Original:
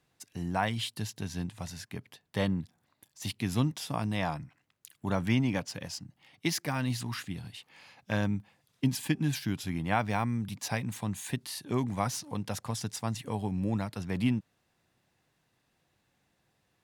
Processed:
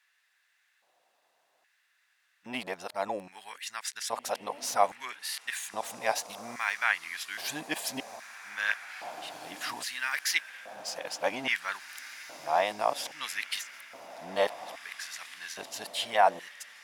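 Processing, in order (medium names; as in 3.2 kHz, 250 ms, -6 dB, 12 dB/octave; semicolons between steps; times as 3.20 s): reverse the whole clip; echo that smears into a reverb 1996 ms, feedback 44%, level -13 dB; LFO high-pass square 0.61 Hz 640–1700 Hz; trim +2.5 dB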